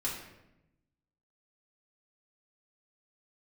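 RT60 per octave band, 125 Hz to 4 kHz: 1.4, 1.3, 1.0, 0.80, 0.80, 0.65 seconds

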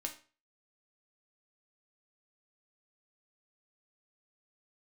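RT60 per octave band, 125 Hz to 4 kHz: 0.40, 0.35, 0.40, 0.35, 0.35, 0.35 seconds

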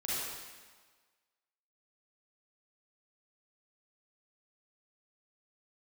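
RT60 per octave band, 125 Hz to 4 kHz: 1.2, 1.4, 1.4, 1.5, 1.4, 1.3 seconds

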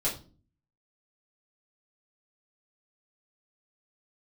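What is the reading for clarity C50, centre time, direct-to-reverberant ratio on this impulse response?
9.5 dB, 23 ms, −7.5 dB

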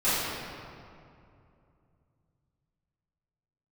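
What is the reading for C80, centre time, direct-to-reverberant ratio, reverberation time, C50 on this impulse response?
−1.0 dB, 155 ms, −15.0 dB, 2.6 s, −3.5 dB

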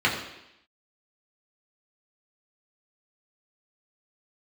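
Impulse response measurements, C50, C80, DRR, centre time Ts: 6.0 dB, 8.0 dB, −4.5 dB, 34 ms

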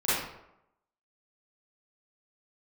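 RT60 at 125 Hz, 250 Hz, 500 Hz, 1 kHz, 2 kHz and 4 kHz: 0.75, 0.80, 0.85, 0.85, 0.65, 0.50 seconds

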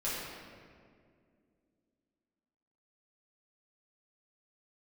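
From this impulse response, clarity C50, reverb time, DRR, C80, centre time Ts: −2.0 dB, 2.2 s, −10.0 dB, 0.0 dB, 123 ms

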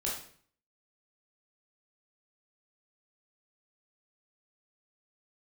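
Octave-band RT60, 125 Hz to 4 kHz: 0.65, 0.60, 0.55, 0.50, 0.50, 0.45 seconds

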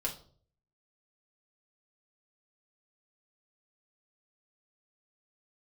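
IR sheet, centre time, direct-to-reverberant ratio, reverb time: 14 ms, −2.0 dB, 0.50 s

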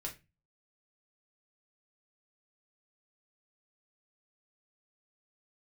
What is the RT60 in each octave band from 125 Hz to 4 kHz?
0.50, 0.40, 0.25, 0.20, 0.25, 0.20 seconds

